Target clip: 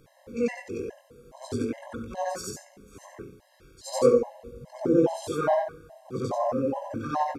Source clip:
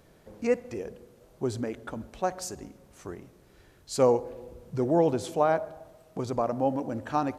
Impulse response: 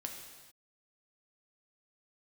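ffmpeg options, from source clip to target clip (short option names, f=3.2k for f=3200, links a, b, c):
-filter_complex "[0:a]afftfilt=real='re':imag='-im':win_size=8192:overlap=0.75,acontrast=72,asplit=2[a][b];[b]aecho=0:1:21|64:0.631|0.188[c];[a][c]amix=inputs=2:normalize=0,afftfilt=real='re*gt(sin(2*PI*2.4*pts/sr)*(1-2*mod(floor(b*sr/1024/540),2)),0)':imag='im*gt(sin(2*PI*2.4*pts/sr)*(1-2*mod(floor(b*sr/1024/540),2)),0)':win_size=1024:overlap=0.75"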